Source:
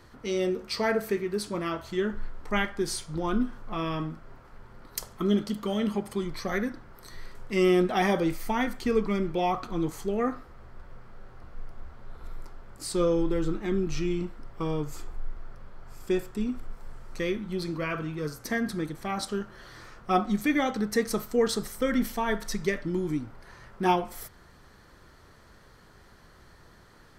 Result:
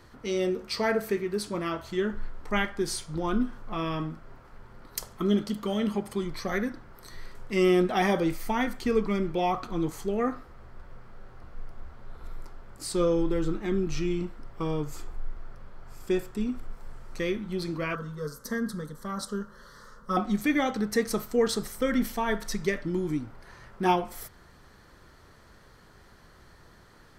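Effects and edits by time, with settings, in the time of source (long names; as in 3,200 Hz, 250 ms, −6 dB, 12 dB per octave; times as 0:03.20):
0:17.95–0:20.17: phaser with its sweep stopped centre 490 Hz, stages 8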